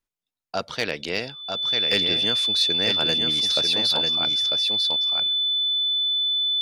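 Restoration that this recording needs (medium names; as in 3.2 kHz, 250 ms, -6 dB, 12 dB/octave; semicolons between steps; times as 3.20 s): clip repair -11 dBFS; band-stop 3.5 kHz, Q 30; inverse comb 946 ms -5 dB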